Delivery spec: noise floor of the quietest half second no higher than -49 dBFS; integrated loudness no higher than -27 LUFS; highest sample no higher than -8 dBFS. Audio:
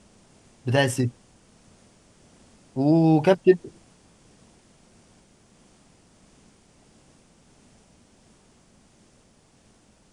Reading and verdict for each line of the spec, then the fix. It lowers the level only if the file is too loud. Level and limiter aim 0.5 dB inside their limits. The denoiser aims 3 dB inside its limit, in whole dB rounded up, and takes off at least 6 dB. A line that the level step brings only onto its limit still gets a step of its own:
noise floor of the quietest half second -59 dBFS: pass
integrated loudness -21.5 LUFS: fail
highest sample -5.5 dBFS: fail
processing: trim -6 dB

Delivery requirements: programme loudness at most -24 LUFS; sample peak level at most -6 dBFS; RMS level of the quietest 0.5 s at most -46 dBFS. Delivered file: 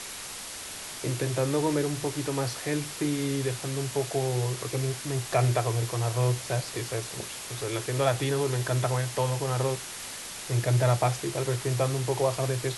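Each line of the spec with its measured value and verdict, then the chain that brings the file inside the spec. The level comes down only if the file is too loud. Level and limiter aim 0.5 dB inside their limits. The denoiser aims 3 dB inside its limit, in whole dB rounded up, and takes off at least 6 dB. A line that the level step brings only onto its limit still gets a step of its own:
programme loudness -28.5 LUFS: pass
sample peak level -11.5 dBFS: pass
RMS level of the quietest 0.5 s -39 dBFS: fail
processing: noise reduction 10 dB, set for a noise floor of -39 dBFS

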